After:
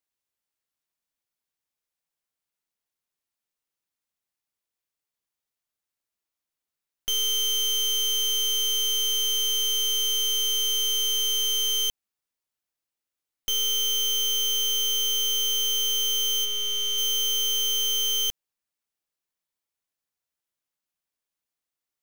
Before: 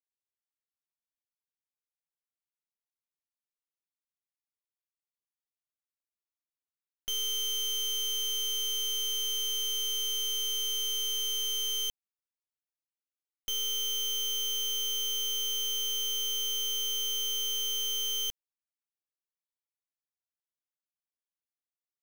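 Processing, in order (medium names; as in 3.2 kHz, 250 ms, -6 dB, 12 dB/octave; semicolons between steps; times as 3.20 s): 16.44–16.97 s: treble shelf 4.1 kHz -> 8.4 kHz -9 dB; trim +7 dB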